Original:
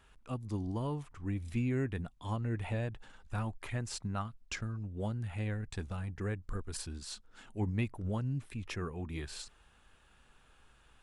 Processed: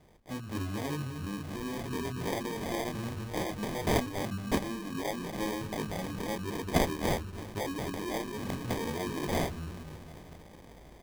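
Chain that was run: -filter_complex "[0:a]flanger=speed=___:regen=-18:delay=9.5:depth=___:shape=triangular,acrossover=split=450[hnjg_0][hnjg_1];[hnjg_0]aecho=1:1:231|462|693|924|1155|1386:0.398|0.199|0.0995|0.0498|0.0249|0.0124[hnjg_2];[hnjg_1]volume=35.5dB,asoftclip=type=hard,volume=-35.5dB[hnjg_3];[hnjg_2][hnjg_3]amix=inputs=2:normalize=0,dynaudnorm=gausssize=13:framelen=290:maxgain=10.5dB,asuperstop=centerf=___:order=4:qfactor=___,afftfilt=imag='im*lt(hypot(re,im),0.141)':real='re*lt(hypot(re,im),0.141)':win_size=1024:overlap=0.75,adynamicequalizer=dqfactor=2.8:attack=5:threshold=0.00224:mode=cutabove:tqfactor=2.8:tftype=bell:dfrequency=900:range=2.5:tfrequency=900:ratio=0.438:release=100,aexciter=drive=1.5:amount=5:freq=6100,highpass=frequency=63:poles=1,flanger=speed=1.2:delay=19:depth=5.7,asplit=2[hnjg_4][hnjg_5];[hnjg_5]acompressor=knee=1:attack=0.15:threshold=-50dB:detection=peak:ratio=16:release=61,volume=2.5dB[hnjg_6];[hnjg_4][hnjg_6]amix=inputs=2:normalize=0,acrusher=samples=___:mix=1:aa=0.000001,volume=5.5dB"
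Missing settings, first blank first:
0.59, 5.4, 1700, 1.3, 32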